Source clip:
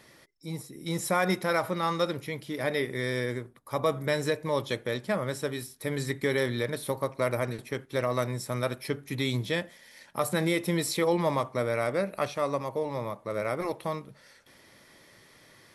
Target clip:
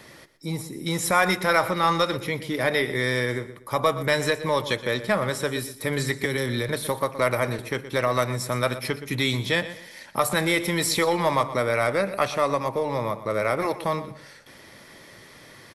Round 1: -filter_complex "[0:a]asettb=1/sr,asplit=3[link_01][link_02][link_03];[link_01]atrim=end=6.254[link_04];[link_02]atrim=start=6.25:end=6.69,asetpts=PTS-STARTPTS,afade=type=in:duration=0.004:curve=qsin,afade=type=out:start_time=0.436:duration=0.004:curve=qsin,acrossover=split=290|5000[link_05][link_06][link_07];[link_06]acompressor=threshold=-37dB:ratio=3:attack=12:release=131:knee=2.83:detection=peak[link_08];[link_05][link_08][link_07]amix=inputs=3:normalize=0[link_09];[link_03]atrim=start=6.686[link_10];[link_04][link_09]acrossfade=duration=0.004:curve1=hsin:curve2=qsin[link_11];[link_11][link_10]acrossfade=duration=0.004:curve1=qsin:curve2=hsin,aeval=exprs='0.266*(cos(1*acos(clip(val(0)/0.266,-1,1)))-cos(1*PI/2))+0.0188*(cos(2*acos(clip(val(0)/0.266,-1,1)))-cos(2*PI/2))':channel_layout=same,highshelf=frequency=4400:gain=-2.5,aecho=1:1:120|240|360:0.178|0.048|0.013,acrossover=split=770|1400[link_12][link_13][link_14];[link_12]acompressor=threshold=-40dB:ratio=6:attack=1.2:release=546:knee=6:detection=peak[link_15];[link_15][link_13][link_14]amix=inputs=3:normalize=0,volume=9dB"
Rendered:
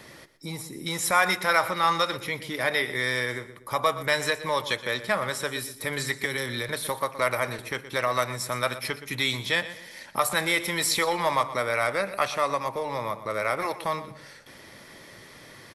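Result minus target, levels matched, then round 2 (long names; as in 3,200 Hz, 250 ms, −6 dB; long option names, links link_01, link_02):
downward compressor: peak gain reduction +8.5 dB
-filter_complex "[0:a]asettb=1/sr,asplit=3[link_01][link_02][link_03];[link_01]atrim=end=6.254[link_04];[link_02]atrim=start=6.25:end=6.69,asetpts=PTS-STARTPTS,afade=type=in:duration=0.004:curve=qsin,afade=type=out:start_time=0.436:duration=0.004:curve=qsin,acrossover=split=290|5000[link_05][link_06][link_07];[link_06]acompressor=threshold=-37dB:ratio=3:attack=12:release=131:knee=2.83:detection=peak[link_08];[link_05][link_08][link_07]amix=inputs=3:normalize=0[link_09];[link_03]atrim=start=6.686[link_10];[link_04][link_09]acrossfade=duration=0.004:curve1=hsin:curve2=qsin[link_11];[link_11][link_10]acrossfade=duration=0.004:curve1=qsin:curve2=hsin,aeval=exprs='0.266*(cos(1*acos(clip(val(0)/0.266,-1,1)))-cos(1*PI/2))+0.0188*(cos(2*acos(clip(val(0)/0.266,-1,1)))-cos(2*PI/2))':channel_layout=same,highshelf=frequency=4400:gain=-2.5,aecho=1:1:120|240|360:0.178|0.048|0.013,acrossover=split=770|1400[link_12][link_13][link_14];[link_12]acompressor=threshold=-30dB:ratio=6:attack=1.2:release=546:knee=6:detection=peak[link_15];[link_15][link_13][link_14]amix=inputs=3:normalize=0,volume=9dB"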